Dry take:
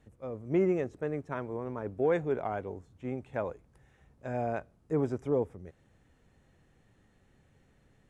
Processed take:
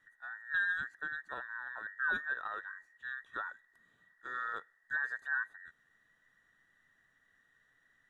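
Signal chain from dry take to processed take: every band turned upside down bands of 2 kHz; trim -6.5 dB

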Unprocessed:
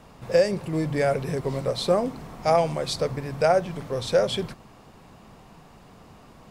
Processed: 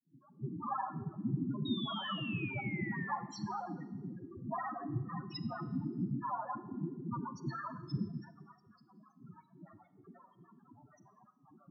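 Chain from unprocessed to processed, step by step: pitch bend over the whole clip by +8.5 st ending unshifted; peaking EQ 160 Hz +5.5 dB 0.79 oct; compression 10:1, threshold -31 dBFS, peak gain reduction 16 dB; granular stretch 1.8×, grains 81 ms; bit crusher 7-bit; phase dispersion highs, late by 130 ms, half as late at 380 Hz; noise-vocoded speech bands 3; flange 0.34 Hz, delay 4.1 ms, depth 3.9 ms, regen -87%; loudest bins only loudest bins 4; static phaser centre 2.3 kHz, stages 8; painted sound fall, 1.65–3.14 s, 1.7–3.8 kHz -57 dBFS; Schroeder reverb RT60 1.1 s, combs from 30 ms, DRR 13 dB; trim +12.5 dB

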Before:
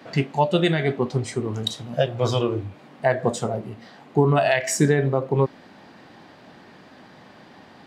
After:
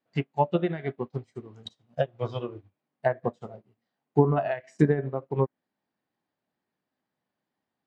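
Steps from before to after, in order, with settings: low-pass that closes with the level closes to 1.4 kHz, closed at -14.5 dBFS; wow and flutter 27 cents; upward expansion 2.5:1, over -39 dBFS

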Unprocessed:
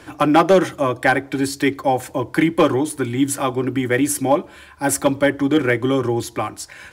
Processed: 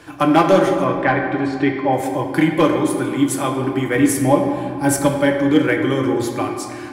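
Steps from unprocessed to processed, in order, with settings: 0.84–1.93 s: low-pass 2.7 kHz 12 dB/octave; 3.95–5.06 s: bass shelf 220 Hz +8.5 dB; reverberation RT60 2.2 s, pre-delay 6 ms, DRR 2 dB; trim -1.5 dB

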